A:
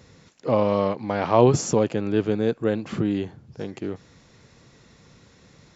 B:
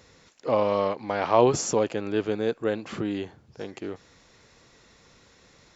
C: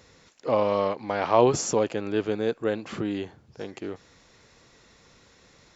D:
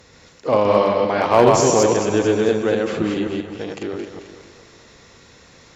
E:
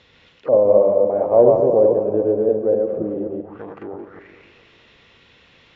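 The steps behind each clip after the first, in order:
peaking EQ 140 Hz -10 dB 2.1 oct
no audible change
chunks repeated in reverse 131 ms, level -2 dB; two-band feedback delay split 450 Hz, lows 156 ms, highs 221 ms, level -8.5 dB; one-sided clip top -13.5 dBFS; trim +6 dB
touch-sensitive low-pass 560–3400 Hz down, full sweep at -20.5 dBFS; trim -7 dB

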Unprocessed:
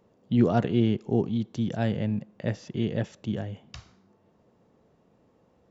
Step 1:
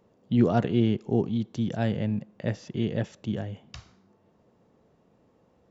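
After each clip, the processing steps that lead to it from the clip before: no audible change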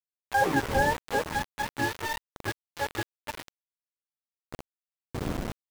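spectrum inverted on a logarithmic axis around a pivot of 440 Hz; wind noise 260 Hz -38 dBFS; small samples zeroed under -28.5 dBFS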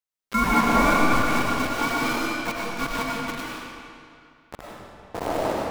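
ring modulator 580 Hz; reverberation RT60 2.4 s, pre-delay 60 ms, DRR -4 dB; trim +4.5 dB

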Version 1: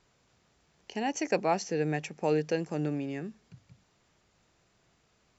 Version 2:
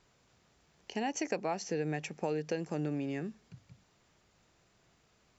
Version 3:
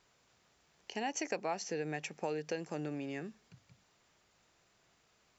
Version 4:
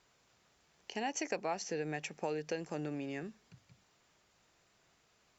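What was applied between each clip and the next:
compression 6:1, threshold -30 dBFS, peak gain reduction 9 dB
bass shelf 370 Hz -8 dB
Opus 64 kbps 48 kHz

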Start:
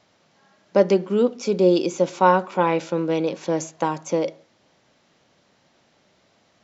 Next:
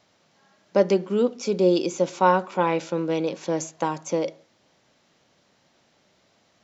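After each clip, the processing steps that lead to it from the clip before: treble shelf 4.9 kHz +4 dB; trim -2.5 dB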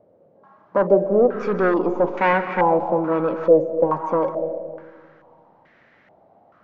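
saturation -20.5 dBFS, distortion -8 dB; reverberation RT60 2.1 s, pre-delay 110 ms, DRR 9 dB; step-sequenced low-pass 2.3 Hz 530–1900 Hz; trim +4.5 dB

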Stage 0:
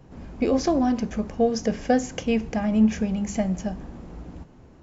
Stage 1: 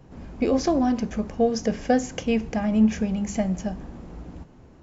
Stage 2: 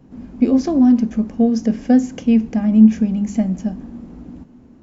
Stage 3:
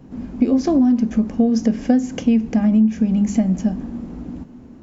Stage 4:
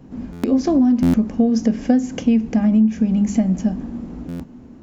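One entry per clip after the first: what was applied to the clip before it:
no audible change
peaking EQ 240 Hz +15 dB 0.72 oct; trim -3 dB
compression 6:1, threshold -17 dBFS, peak gain reduction 12 dB; trim +4.5 dB
buffer glitch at 0.32/1.02/4.28 s, samples 512, times 9

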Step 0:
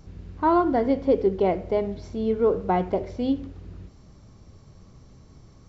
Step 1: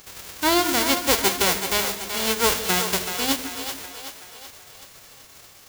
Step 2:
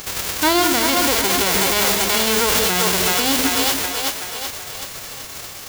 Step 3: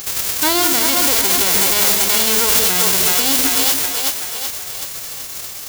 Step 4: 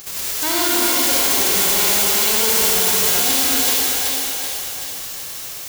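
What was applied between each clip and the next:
formants flattened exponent 0.1; two-band feedback delay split 400 Hz, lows 148 ms, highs 379 ms, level -8 dB
in parallel at +2 dB: compressor with a negative ratio -28 dBFS; on the sum: peak limiter -11.5 dBFS, peak gain reduction 9 dB; trim +4.5 dB
treble shelf 4.5 kHz +9.5 dB; trim -2.5 dB
reverberation RT60 2.2 s, pre-delay 53 ms, DRR -4.5 dB; trim -7.5 dB

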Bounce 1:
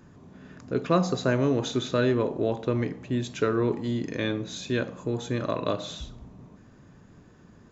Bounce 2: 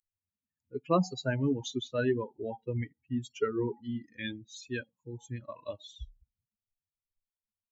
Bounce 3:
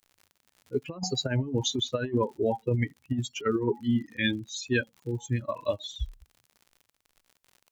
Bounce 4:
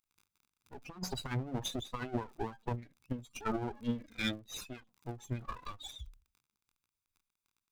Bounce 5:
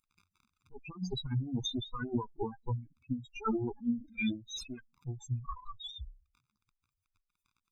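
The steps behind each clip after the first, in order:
expander on every frequency bin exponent 3
crackle 72 per s -54 dBFS; compressor with a negative ratio -33 dBFS, ratio -0.5; trim +7.5 dB
comb filter that takes the minimum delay 0.82 ms; endings held to a fixed fall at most 180 dB/s; trim -5.5 dB
spectral contrast enhancement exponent 3.1; trim +3.5 dB

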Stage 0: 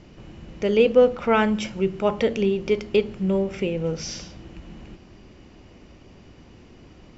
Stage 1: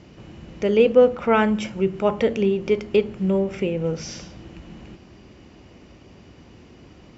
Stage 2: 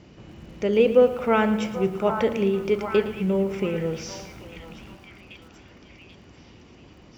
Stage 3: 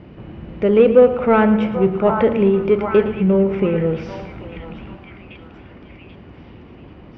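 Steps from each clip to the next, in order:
high-pass 53 Hz; dynamic bell 4.6 kHz, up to -5 dB, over -46 dBFS, Q 0.92; trim +1.5 dB
repeats whose band climbs or falls 787 ms, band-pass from 1 kHz, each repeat 0.7 oct, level -5 dB; bit-crushed delay 113 ms, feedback 55%, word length 7-bit, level -13 dB; trim -2.5 dB
in parallel at -3 dB: saturation -19.5 dBFS, distortion -9 dB; on the sum: distance through air 460 m; trim +5 dB

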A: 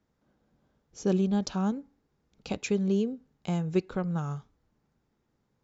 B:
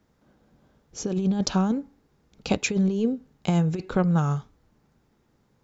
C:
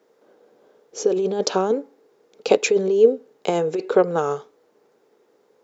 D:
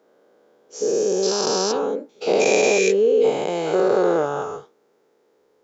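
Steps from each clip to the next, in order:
compressor with a negative ratio -28 dBFS, ratio -0.5; trim +7 dB
resonant high-pass 440 Hz, resonance Q 4.6; trim +3.5 dB
every event in the spectrogram widened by 480 ms; trim -8 dB

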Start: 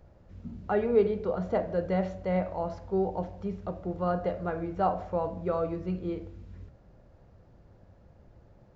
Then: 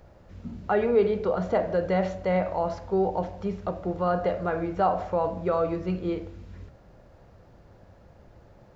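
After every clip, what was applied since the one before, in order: bass shelf 420 Hz -6.5 dB; in parallel at +2 dB: peak limiter -26.5 dBFS, peak gain reduction 11 dB; on the sum: trim +1.5 dB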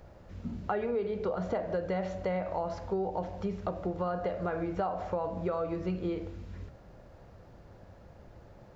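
compression 6:1, threshold -29 dBFS, peak gain reduction 12.5 dB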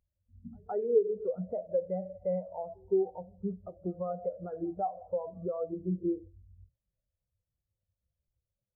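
pre-echo 164 ms -13 dB; spectral contrast expander 2.5:1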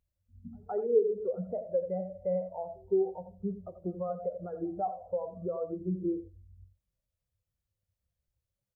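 delay 86 ms -12 dB; reverberation, pre-delay 22 ms, DRR 17.5 dB

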